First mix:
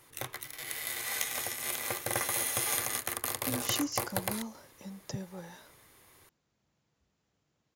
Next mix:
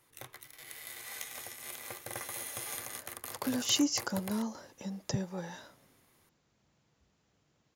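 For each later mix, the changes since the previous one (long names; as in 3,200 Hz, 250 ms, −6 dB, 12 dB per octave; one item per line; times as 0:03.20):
speech +5.0 dB
background −9.0 dB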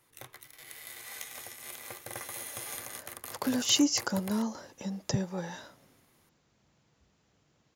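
speech +3.5 dB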